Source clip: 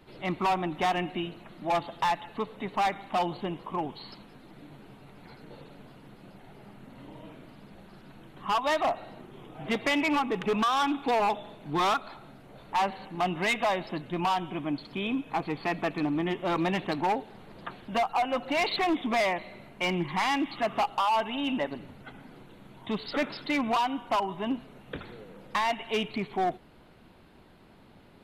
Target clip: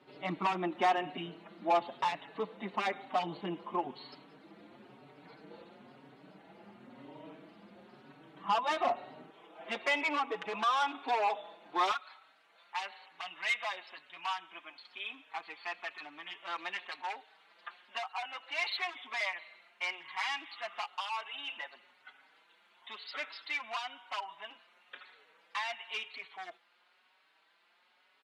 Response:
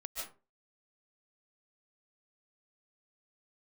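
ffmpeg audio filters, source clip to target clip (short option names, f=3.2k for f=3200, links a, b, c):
-filter_complex "[0:a]asetnsamples=n=441:p=0,asendcmd='9.3 highpass f 550;11.91 highpass f 1400',highpass=220,adynamicsmooth=sensitivity=1:basefreq=6.5k,asplit=2[a][b];[b]adelay=5,afreqshift=1[c];[a][c]amix=inputs=2:normalize=1"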